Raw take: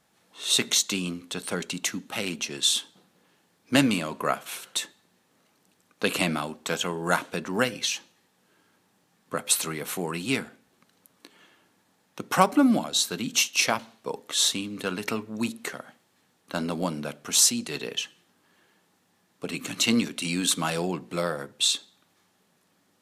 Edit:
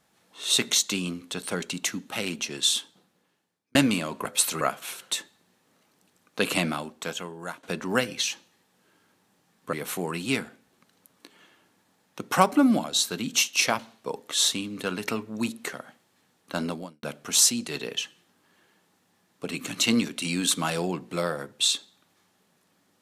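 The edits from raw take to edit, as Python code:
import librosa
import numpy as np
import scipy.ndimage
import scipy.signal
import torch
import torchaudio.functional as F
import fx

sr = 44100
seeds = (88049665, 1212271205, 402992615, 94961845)

y = fx.edit(x, sr, fx.fade_out_span(start_s=2.64, length_s=1.11),
    fx.fade_out_to(start_s=6.26, length_s=1.01, floor_db=-18.5),
    fx.move(start_s=9.37, length_s=0.36, to_s=4.25),
    fx.fade_out_span(start_s=16.68, length_s=0.35, curve='qua'), tone=tone)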